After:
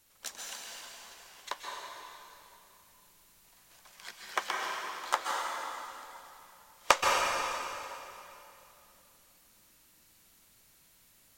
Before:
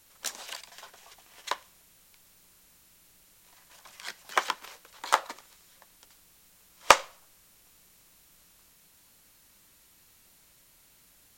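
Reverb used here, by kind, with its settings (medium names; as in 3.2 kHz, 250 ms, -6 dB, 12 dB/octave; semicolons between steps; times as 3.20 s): plate-style reverb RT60 2.9 s, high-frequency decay 0.9×, pre-delay 115 ms, DRR -2 dB; trim -6.5 dB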